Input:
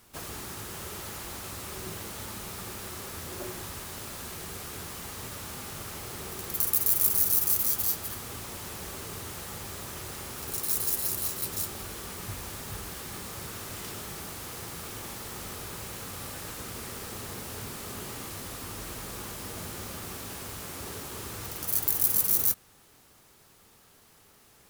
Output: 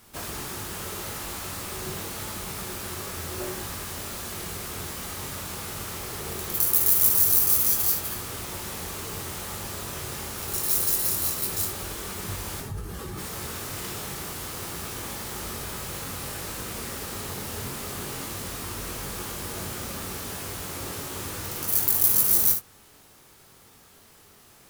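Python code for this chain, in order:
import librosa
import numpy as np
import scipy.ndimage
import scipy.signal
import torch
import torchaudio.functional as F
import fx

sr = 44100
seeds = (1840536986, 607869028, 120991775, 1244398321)

y = fx.spec_expand(x, sr, power=1.9, at=(12.6, 13.17), fade=0.02)
y = fx.room_early_taps(y, sr, ms=(22, 59, 73), db=(-5.0, -10.0, -10.5))
y = F.gain(torch.from_numpy(y), 3.0).numpy()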